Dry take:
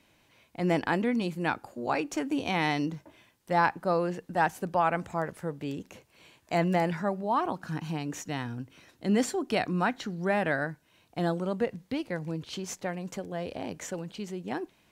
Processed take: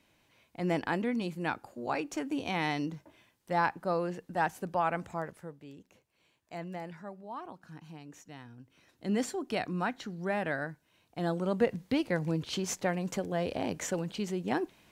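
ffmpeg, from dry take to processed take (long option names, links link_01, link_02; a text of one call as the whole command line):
ffmpeg -i in.wav -af "volume=13.5dB,afade=type=out:start_time=5.1:duration=0.51:silence=0.298538,afade=type=in:start_time=8.58:duration=0.52:silence=0.334965,afade=type=in:start_time=11.19:duration=0.55:silence=0.398107" out.wav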